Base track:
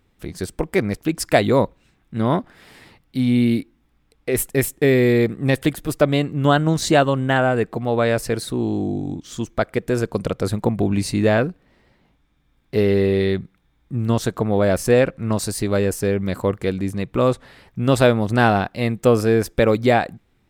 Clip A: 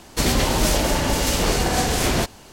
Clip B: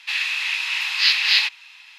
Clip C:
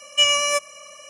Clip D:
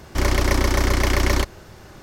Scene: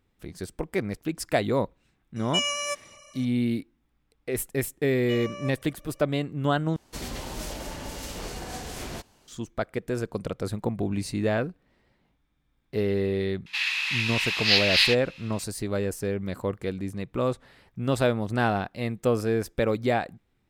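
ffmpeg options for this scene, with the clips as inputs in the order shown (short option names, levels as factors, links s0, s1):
-filter_complex "[3:a]asplit=2[s0][s1];[0:a]volume=0.376[s2];[s1]bandpass=f=490:t=q:w=0.57:csg=0[s3];[s2]asplit=2[s4][s5];[s4]atrim=end=6.764[s6];[1:a]atrim=end=2.52,asetpts=PTS-STARTPTS,volume=0.158[s7];[s5]atrim=start=9.276[s8];[s0]atrim=end=1.09,asetpts=PTS-STARTPTS,volume=0.355,afade=t=in:d=0.004:c=hsin,afade=t=out:st=1.086:d=0.004:c=hsin,adelay=2160[s9];[s3]atrim=end=1.09,asetpts=PTS-STARTPTS,volume=0.237,afade=t=in:d=0.004:c=hsin,afade=t=out:st=1.086:d=0.004:c=hsin,adelay=4910[s10];[2:a]atrim=end=1.98,asetpts=PTS-STARTPTS,volume=0.668,afade=t=in:d=0.004:c=hsin,afade=t=out:st=1.976:d=0.004:c=hsin,adelay=13460[s11];[s6][s7]acrossfade=d=0.004:c1=hsin:c2=hsin[s12];[s12][s8]acrossfade=d=0.004:c1=hsin:c2=hsin[s13];[s13][s9][s10][s11]amix=inputs=4:normalize=0"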